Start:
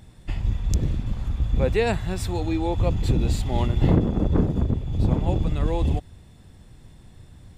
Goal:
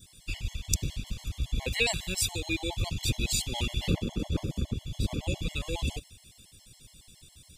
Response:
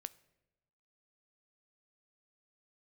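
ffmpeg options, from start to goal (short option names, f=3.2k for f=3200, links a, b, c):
-af "aexciter=amount=8.1:drive=3.9:freq=2.3k,adynamicequalizer=threshold=0.00708:dfrequency=2500:dqfactor=4.7:tfrequency=2500:tqfactor=4.7:attack=5:release=100:ratio=0.375:range=2.5:mode=boostabove:tftype=bell,afftfilt=real='re*gt(sin(2*PI*7.2*pts/sr)*(1-2*mod(floor(b*sr/1024/560),2)),0)':imag='im*gt(sin(2*PI*7.2*pts/sr)*(1-2*mod(floor(b*sr/1024/560),2)),0)':win_size=1024:overlap=0.75,volume=-7.5dB"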